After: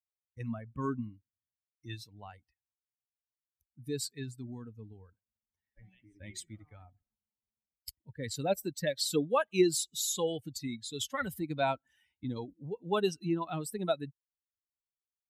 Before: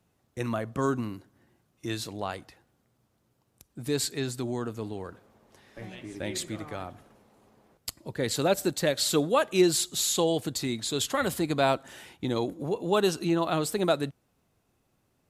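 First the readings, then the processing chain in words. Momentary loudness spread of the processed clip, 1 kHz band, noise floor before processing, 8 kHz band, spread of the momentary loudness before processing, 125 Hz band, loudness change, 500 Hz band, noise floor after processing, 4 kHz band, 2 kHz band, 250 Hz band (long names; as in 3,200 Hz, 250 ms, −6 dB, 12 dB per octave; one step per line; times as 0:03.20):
19 LU, −6.0 dB, −72 dBFS, −6.5 dB, 16 LU, −6.0 dB, −5.5 dB, −6.5 dB, below −85 dBFS, −7.5 dB, −7.0 dB, −6.5 dB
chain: spectral dynamics exaggerated over time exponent 2
level −2 dB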